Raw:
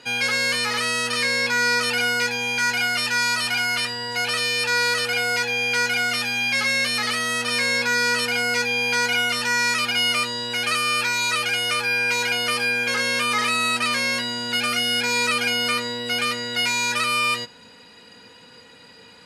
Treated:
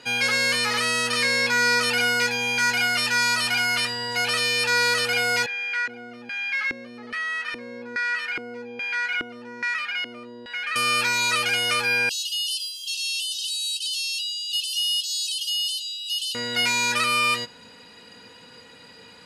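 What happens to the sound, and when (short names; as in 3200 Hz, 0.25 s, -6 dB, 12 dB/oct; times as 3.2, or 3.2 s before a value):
5.46–10.76 LFO band-pass square 1.2 Hz 320–1800 Hz
12.09–16.35 brick-wall FIR high-pass 2600 Hz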